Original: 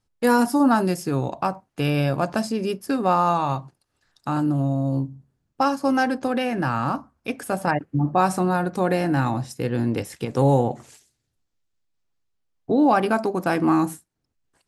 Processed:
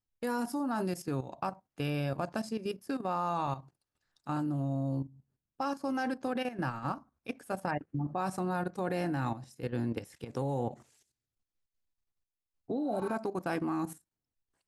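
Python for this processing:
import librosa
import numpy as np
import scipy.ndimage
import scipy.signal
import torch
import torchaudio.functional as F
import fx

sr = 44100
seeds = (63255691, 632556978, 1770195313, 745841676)

y = fx.spec_repair(x, sr, seeds[0], start_s=12.81, length_s=0.3, low_hz=760.0, high_hz=7300.0, source='both')
y = fx.level_steps(y, sr, step_db=12)
y = y * librosa.db_to_amplitude(-8.0)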